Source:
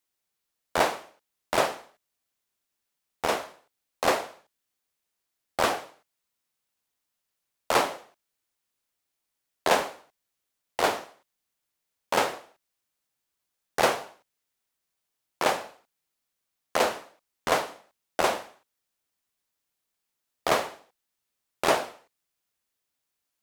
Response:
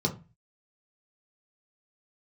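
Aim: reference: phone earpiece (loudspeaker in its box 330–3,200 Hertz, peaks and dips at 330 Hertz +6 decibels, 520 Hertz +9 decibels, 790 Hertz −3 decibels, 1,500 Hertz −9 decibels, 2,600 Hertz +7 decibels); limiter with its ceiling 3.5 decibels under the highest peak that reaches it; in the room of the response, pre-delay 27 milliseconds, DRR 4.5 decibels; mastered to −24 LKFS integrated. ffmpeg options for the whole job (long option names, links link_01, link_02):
-filter_complex "[0:a]alimiter=limit=-12dB:level=0:latency=1,asplit=2[link_01][link_02];[1:a]atrim=start_sample=2205,adelay=27[link_03];[link_02][link_03]afir=irnorm=-1:irlink=0,volume=-12.5dB[link_04];[link_01][link_04]amix=inputs=2:normalize=0,highpass=330,equalizer=frequency=330:width_type=q:width=4:gain=6,equalizer=frequency=520:width_type=q:width=4:gain=9,equalizer=frequency=790:width_type=q:width=4:gain=-3,equalizer=frequency=1500:width_type=q:width=4:gain=-9,equalizer=frequency=2600:width_type=q:width=4:gain=7,lowpass=frequency=3200:width=0.5412,lowpass=frequency=3200:width=1.3066,volume=2dB"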